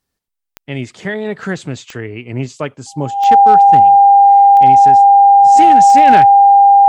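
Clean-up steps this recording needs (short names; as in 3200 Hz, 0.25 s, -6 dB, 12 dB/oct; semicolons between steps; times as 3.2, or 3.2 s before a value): clip repair -1.5 dBFS; de-click; notch 800 Hz, Q 30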